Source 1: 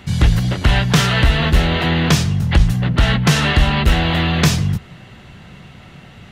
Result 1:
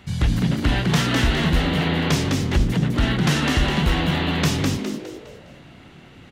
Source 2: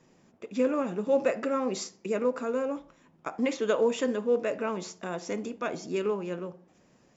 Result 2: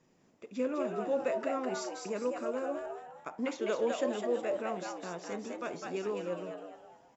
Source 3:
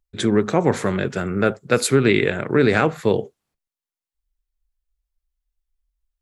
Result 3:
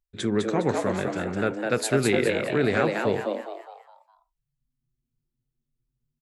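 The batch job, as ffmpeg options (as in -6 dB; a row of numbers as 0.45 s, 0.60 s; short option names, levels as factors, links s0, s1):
-filter_complex "[0:a]asplit=6[s0][s1][s2][s3][s4][s5];[s1]adelay=205,afreqshift=110,volume=0.631[s6];[s2]adelay=410,afreqshift=220,volume=0.245[s7];[s3]adelay=615,afreqshift=330,volume=0.0955[s8];[s4]adelay=820,afreqshift=440,volume=0.0376[s9];[s5]adelay=1025,afreqshift=550,volume=0.0146[s10];[s0][s6][s7][s8][s9][s10]amix=inputs=6:normalize=0,volume=0.447"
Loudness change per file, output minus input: -5.0 LU, -5.5 LU, -5.5 LU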